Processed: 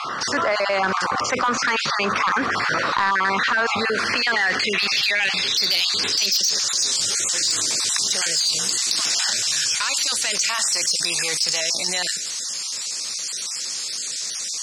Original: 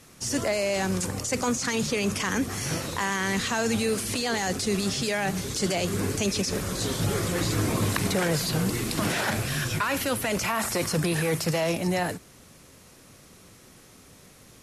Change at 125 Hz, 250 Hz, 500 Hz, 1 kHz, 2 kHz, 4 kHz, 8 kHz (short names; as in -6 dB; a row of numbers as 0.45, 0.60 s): -13.0, -6.5, -1.0, +8.0, +9.0, +12.5, +10.5 dB